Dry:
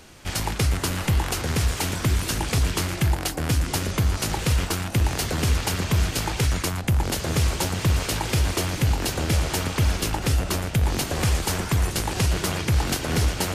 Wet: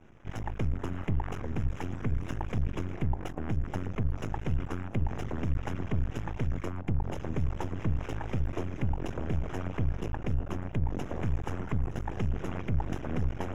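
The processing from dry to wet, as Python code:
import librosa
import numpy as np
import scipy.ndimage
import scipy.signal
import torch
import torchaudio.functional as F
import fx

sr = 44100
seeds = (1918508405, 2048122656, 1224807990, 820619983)

y = fx.envelope_sharpen(x, sr, power=1.5)
y = np.maximum(y, 0.0)
y = np.convolve(y, np.full(10, 1.0 / 10))[:len(y)]
y = y * librosa.db_to_amplitude(-4.0)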